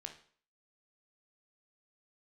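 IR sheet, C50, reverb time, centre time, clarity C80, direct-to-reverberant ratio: 9.5 dB, 0.50 s, 13 ms, 14.5 dB, 4.5 dB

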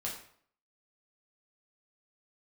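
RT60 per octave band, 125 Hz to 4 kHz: 0.60 s, 0.60 s, 0.60 s, 0.60 s, 0.50 s, 0.45 s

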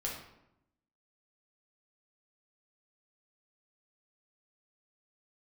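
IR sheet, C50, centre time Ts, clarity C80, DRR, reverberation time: 3.5 dB, 42 ms, 7.0 dB, -3.0 dB, 0.85 s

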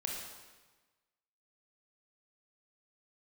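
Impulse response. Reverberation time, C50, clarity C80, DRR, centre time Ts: 1.3 s, 1.5 dB, 3.5 dB, -1.0 dB, 67 ms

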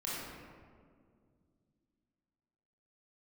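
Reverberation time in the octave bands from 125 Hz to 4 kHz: 3.2 s, 3.3 s, 2.4 s, 1.8 s, 1.4 s, 0.95 s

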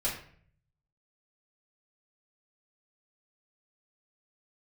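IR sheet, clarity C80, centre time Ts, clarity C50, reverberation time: 9.5 dB, 32 ms, 6.0 dB, 0.55 s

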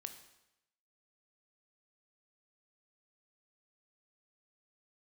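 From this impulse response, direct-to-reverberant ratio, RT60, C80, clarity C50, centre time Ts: 7.0 dB, 0.85 s, 12.0 dB, 10.0 dB, 14 ms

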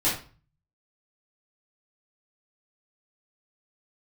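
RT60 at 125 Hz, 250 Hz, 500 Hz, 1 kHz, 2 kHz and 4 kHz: 0.75 s, 0.45 s, 0.40 s, 0.40 s, 0.35 s, 0.30 s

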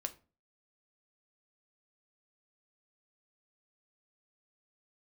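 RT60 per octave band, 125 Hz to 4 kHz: 0.45 s, 0.45 s, 0.35 s, 0.35 s, 0.30 s, 0.25 s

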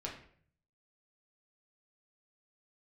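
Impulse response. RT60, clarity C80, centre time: 0.55 s, 10.5 dB, 28 ms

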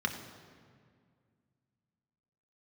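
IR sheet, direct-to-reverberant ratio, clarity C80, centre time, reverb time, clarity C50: 3.0 dB, 9.0 dB, 26 ms, 2.0 s, 8.0 dB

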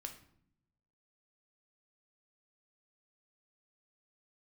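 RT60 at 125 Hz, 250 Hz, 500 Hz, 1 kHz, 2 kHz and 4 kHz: 1.3 s, 1.1 s, 0.75 s, 0.60 s, 0.55 s, 0.45 s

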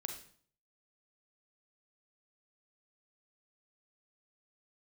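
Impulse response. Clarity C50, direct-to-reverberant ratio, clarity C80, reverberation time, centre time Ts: 7.0 dB, 4.0 dB, 10.5 dB, 0.50 s, 21 ms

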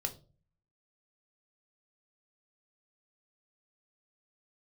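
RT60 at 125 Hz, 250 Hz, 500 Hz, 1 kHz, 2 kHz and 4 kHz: 0.75 s, 0.60 s, 0.45 s, 0.30 s, 0.25 s, 0.30 s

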